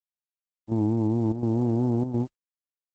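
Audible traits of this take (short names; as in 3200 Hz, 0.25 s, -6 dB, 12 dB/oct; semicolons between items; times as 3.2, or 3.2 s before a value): a quantiser's noise floor 10-bit, dither none; chopped level 1.4 Hz, depth 60%, duty 85%; Opus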